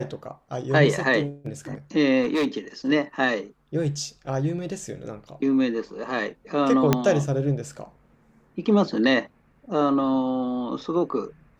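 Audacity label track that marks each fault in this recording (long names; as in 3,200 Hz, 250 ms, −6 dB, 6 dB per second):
2.220000	2.570000	clipping −19 dBFS
6.930000	6.930000	click −4 dBFS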